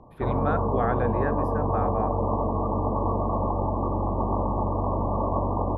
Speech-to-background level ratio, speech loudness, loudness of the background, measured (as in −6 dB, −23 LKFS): −4.5 dB, −31.0 LKFS, −26.5 LKFS